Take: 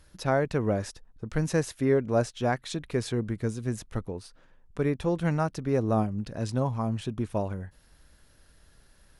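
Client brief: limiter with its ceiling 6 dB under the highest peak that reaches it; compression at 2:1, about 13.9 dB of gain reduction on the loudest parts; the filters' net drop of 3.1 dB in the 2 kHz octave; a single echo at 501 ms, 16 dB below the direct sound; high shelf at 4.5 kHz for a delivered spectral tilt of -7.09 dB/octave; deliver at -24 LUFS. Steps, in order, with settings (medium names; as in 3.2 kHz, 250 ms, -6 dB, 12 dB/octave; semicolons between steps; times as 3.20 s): peaking EQ 2 kHz -3 dB; treble shelf 4.5 kHz -8 dB; compression 2:1, threshold -46 dBFS; peak limiter -31 dBFS; delay 501 ms -16 dB; trim +19.5 dB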